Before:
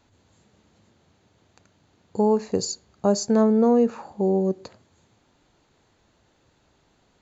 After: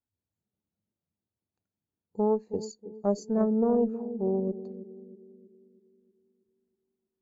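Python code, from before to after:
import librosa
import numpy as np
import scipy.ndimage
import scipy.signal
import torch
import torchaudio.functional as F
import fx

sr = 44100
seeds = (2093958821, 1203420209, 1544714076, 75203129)

y = fx.echo_banded(x, sr, ms=319, feedback_pct=67, hz=300.0, wet_db=-8.0)
y = fx.cheby_harmonics(y, sr, harmonics=(2,), levels_db=(-11,), full_scale_db=-8.0)
y = fx.spectral_expand(y, sr, expansion=1.5)
y = F.gain(torch.from_numpy(y), -8.5).numpy()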